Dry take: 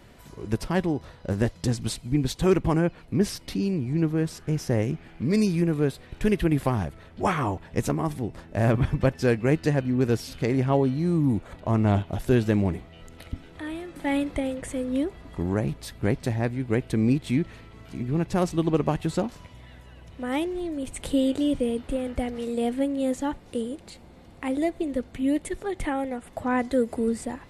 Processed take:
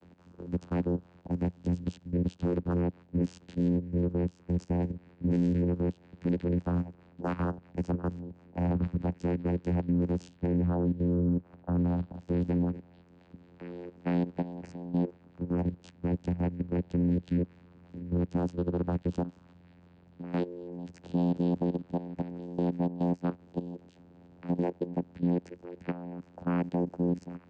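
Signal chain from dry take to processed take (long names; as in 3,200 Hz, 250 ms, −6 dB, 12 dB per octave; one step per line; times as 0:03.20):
output level in coarse steps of 13 dB
channel vocoder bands 8, saw 87.8 Hz
0:10.37–0:11.78: high-shelf EQ 3,000 Hz −9.5 dB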